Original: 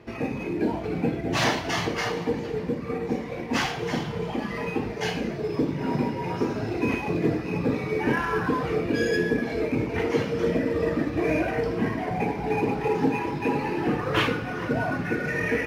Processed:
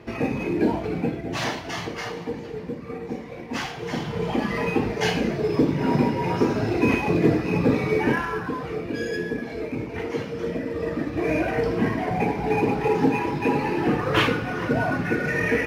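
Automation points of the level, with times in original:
0:00.69 +4 dB
0:01.41 −4 dB
0:03.73 −4 dB
0:04.33 +5 dB
0:07.94 +5 dB
0:08.44 −4 dB
0:10.65 −4 dB
0:11.66 +3 dB

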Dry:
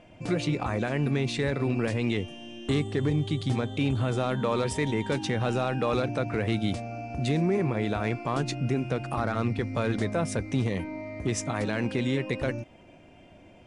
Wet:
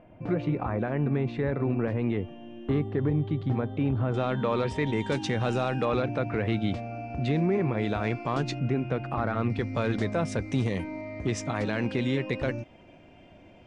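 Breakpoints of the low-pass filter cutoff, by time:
1,500 Hz
from 0:04.14 3,500 Hz
from 0:04.93 7,700 Hz
from 0:05.85 3,300 Hz
from 0:07.78 5,400 Hz
from 0:08.59 2,700 Hz
from 0:09.50 5,900 Hz
from 0:10.42 9,400 Hz
from 0:11.01 5,400 Hz

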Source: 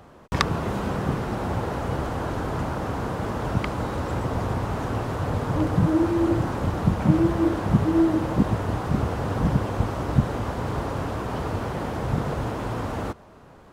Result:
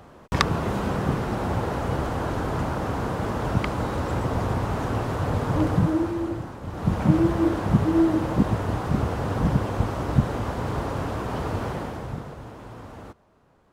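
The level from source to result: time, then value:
0:05.71 +1 dB
0:06.61 −11.5 dB
0:06.94 0 dB
0:11.70 0 dB
0:12.36 −12 dB

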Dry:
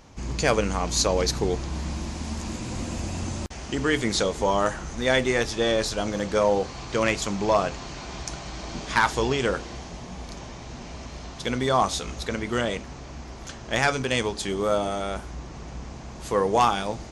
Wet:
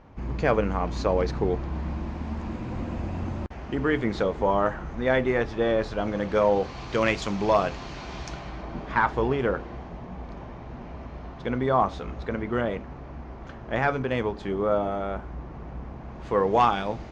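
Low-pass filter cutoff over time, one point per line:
0:05.80 1,800 Hz
0:06.85 4,000 Hz
0:08.25 4,000 Hz
0:08.68 1,600 Hz
0:15.99 1,600 Hz
0:16.56 2,900 Hz

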